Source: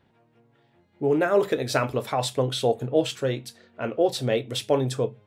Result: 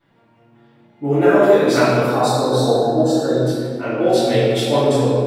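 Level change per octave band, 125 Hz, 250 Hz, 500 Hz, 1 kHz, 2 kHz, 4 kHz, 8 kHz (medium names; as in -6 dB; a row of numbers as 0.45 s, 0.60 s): +9.0 dB, +11.0 dB, +9.0 dB, +10.0 dB, +8.5 dB, +5.5 dB, +5.5 dB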